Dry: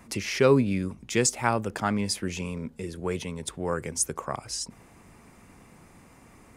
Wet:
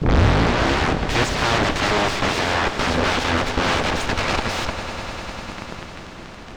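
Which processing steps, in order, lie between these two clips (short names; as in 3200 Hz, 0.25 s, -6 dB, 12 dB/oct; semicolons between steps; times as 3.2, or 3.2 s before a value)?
tape start at the beginning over 0.99 s; sample leveller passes 5; in parallel at -7.5 dB: sine folder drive 20 dB, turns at -6 dBFS; on the sum: added noise pink -40 dBFS; added harmonics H 3 -8 dB, 6 -10 dB, 7 -12 dB, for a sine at -3 dBFS; air absorption 150 m; on a send: swelling echo 0.1 s, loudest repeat 5, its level -16 dB; on the sum: gain -5.5 dB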